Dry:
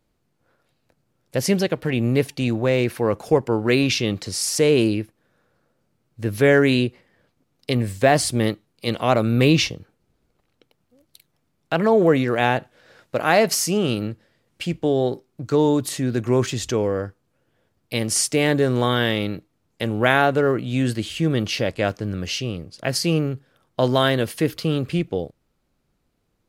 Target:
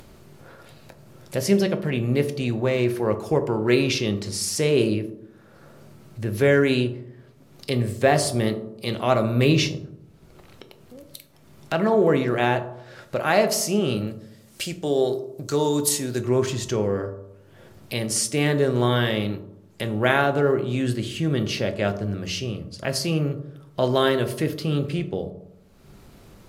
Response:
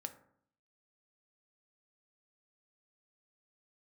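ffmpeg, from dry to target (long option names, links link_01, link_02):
-filter_complex "[0:a]asettb=1/sr,asplit=3[link_01][link_02][link_03];[link_01]atrim=end=14.074[link_04];[link_02]atrim=start=14.07:end=16.2,asetpts=PTS-STARTPTS,afade=type=in:duration=0.004:curve=qsin,afade=type=out:start_time=2.126:duration=0.004:curve=qsin,bass=frequency=250:gain=-5,treble=frequency=4000:gain=12[link_05];[link_03]atrim=start=16.196[link_06];[link_04][link_05]acrossfade=duration=0.004:curve1=hsin:curve2=qsin[link_07];[link_07][link_06]acrossfade=duration=0.004:curve1=qsin:curve2=hsin,acompressor=mode=upward:threshold=-25dB:ratio=2.5[link_08];[1:a]atrim=start_sample=2205,asetrate=31752,aresample=44100[link_09];[link_08][link_09]afir=irnorm=-1:irlink=0,volume=-1dB"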